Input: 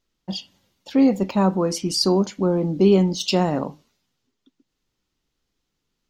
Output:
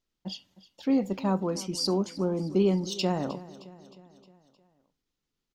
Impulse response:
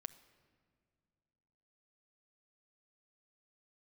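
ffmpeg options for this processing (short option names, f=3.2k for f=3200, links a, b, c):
-af "atempo=1.1,aecho=1:1:310|620|930|1240|1550:0.119|0.0666|0.0373|0.0209|0.0117,volume=-8dB"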